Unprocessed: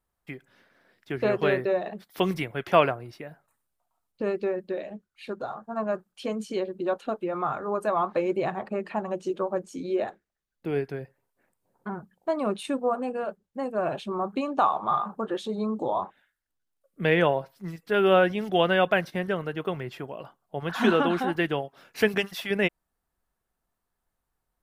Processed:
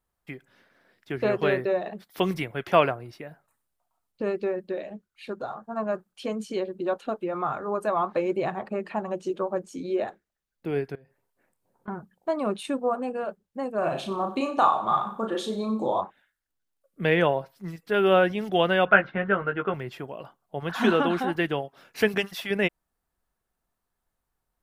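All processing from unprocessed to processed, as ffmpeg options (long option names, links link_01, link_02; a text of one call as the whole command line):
ffmpeg -i in.wav -filter_complex "[0:a]asettb=1/sr,asplit=3[link_01][link_02][link_03];[link_01]atrim=end=10.954[link_04];[link_02]atrim=start=10.95:end=11.88,asetpts=PTS-STARTPTS,afade=type=in:duration=0.004:curve=qsin,afade=type=out:start_time=0.926:duration=0.004:curve=qsin,asplit=2[link_05][link_06];[link_06]adelay=27,volume=-14dB[link_07];[link_05][link_07]amix=inputs=2:normalize=0,atrim=end_sample=41013,acompressor=threshold=-52dB:ratio=6:attack=3.2:release=140:knee=1:detection=peak[link_08];[link_03]atrim=start=11.876[link_09];[link_04][link_08]acrossfade=duration=0.004:curve1=hsin:curve2=qsin[link_10];[link_10][link_09]acrossfade=duration=0.004:curve1=qsin:curve2=hsin,asettb=1/sr,asplit=3[link_11][link_12][link_13];[link_11]atrim=end=13.784[link_14];[link_12]atrim=start=13.78:end=16.01,asetpts=PTS-STARTPTS,afade=type=in:duration=0.004:curve=qsin,afade=type=out:start_time=2.226:duration=0.004:curve=qsin,highshelf=frequency=3800:gain=7,asplit=2[link_15][link_16];[link_16]adelay=36,volume=-5dB[link_17];[link_15][link_17]amix=inputs=2:normalize=0,atrim=end_sample=98343,aecho=1:1:92|184|276:0.188|0.0697|0.0258,atrim=end_sample=98343[link_18];[link_13]atrim=start=16.006[link_19];[link_14][link_18]acrossfade=duration=0.004:curve1=hsin:curve2=qsin[link_20];[link_20][link_19]acrossfade=duration=0.004:curve1=qsin:curve2=hsin,asettb=1/sr,asplit=3[link_21][link_22][link_23];[link_21]atrim=end=18.854[link_24];[link_22]atrim=start=18.85:end=19.74,asetpts=PTS-STARTPTS,afade=type=in:duration=0.004:curve=qsin,afade=type=out:start_time=0.886:duration=0.004:curve=qsin,lowpass=frequency=2800:width=0.5412,lowpass=frequency=2800:width=1.3066,equalizer=frequency=1400:width_type=o:width=0.41:gain=12,asplit=2[link_25][link_26];[link_26]adelay=15,volume=-5dB[link_27];[link_25][link_27]amix=inputs=2:normalize=0,atrim=end_sample=39249[link_28];[link_23]atrim=start=19.736[link_29];[link_24][link_28]acrossfade=duration=0.004:curve1=hsin:curve2=qsin[link_30];[link_30][link_29]acrossfade=duration=0.004:curve1=qsin:curve2=hsin" out.wav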